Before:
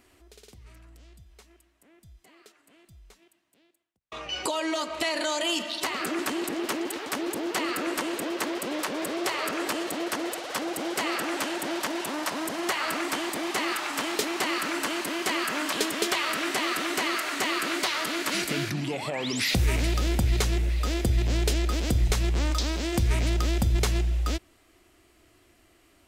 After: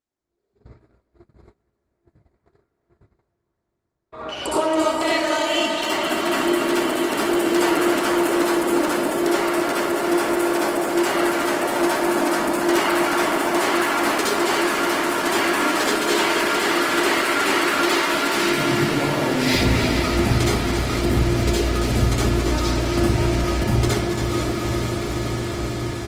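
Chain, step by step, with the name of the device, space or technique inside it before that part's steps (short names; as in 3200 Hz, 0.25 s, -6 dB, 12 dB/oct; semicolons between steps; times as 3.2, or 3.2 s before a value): Wiener smoothing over 15 samples; HPF 73 Hz 12 dB/oct; echo 0.277 s -7 dB; diffused feedback echo 0.477 s, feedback 77%, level -7 dB; speakerphone in a meeting room (reverb RT60 0.70 s, pre-delay 59 ms, DRR -7 dB; speakerphone echo 0.2 s, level -12 dB; AGC gain up to 10 dB; gate -34 dBFS, range -27 dB; gain -6 dB; Opus 20 kbps 48000 Hz)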